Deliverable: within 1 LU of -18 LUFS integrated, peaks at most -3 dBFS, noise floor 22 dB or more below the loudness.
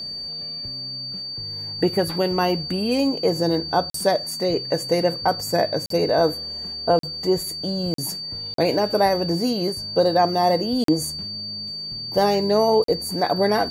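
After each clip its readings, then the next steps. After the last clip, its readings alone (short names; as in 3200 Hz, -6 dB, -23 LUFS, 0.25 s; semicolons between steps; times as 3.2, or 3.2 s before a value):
dropouts 7; longest dropout 43 ms; steady tone 4600 Hz; tone level -29 dBFS; loudness -22.0 LUFS; peak -7.0 dBFS; loudness target -18.0 LUFS
-> interpolate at 3.9/5.86/6.99/7.94/8.54/10.84/12.84, 43 ms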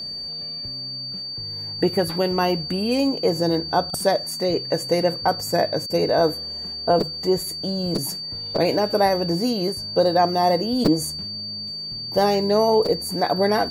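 dropouts 0; steady tone 4600 Hz; tone level -29 dBFS
-> notch 4600 Hz, Q 30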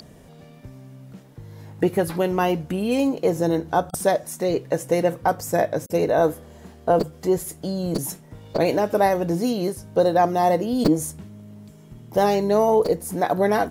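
steady tone none; loudness -22.0 LUFS; peak -5.0 dBFS; loudness target -18.0 LUFS
-> gain +4 dB; limiter -3 dBFS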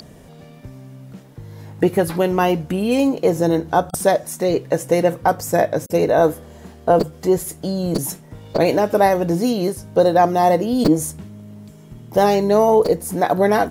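loudness -18.0 LUFS; peak -3.0 dBFS; noise floor -43 dBFS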